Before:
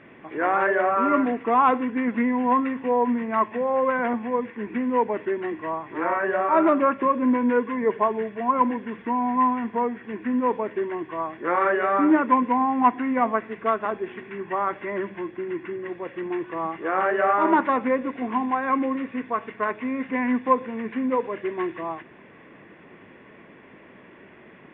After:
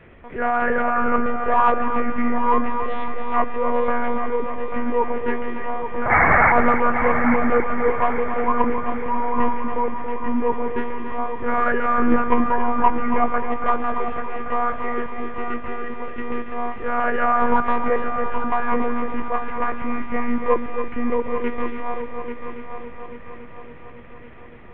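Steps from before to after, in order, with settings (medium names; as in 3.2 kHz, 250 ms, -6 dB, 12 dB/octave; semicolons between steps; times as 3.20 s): 2.71–3.34 s: hard clipper -27.5 dBFS, distortion -19 dB; 6.10–6.52 s: painted sound noise 590–2300 Hz -17 dBFS; monotone LPC vocoder at 8 kHz 240 Hz; on a send: multi-head delay 280 ms, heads first and third, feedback 60%, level -9.5 dB; on the sum: trim +1.5 dB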